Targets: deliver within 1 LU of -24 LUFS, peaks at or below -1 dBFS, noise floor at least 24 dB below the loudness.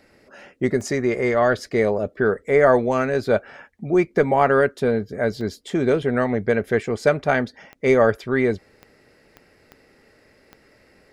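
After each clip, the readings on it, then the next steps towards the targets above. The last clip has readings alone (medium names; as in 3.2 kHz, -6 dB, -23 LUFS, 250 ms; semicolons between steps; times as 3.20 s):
clicks found 7; loudness -20.5 LUFS; peak level -4.0 dBFS; loudness target -24.0 LUFS
-> de-click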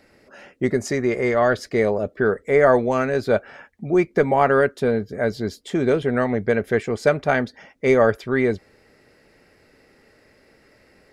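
clicks found 0; loudness -20.5 LUFS; peak level -4.0 dBFS; loudness target -24.0 LUFS
-> trim -3.5 dB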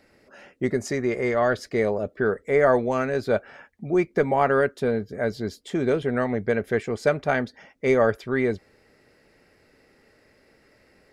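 loudness -24.0 LUFS; peak level -7.5 dBFS; noise floor -61 dBFS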